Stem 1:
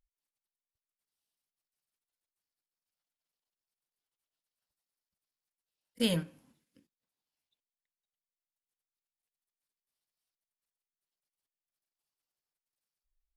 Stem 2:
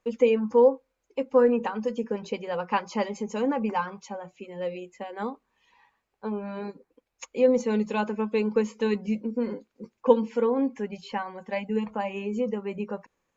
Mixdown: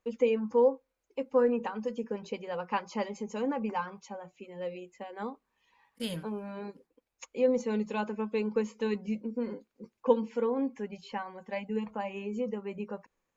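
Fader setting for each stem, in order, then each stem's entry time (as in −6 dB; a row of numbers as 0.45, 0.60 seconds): −6.5, −5.5 decibels; 0.00, 0.00 seconds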